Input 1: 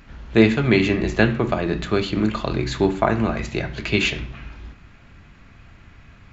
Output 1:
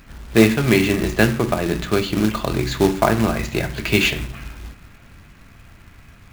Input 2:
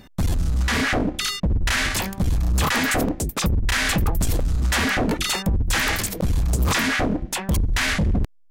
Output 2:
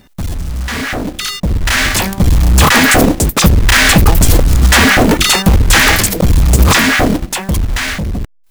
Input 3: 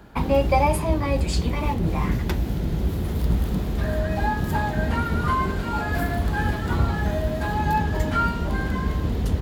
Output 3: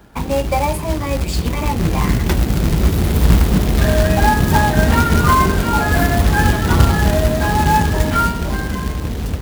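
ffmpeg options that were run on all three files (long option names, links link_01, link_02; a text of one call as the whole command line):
ffmpeg -i in.wav -af "dynaudnorm=framelen=320:gausssize=11:maxgain=14dB,acrusher=bits=3:mode=log:mix=0:aa=0.000001,volume=1dB" out.wav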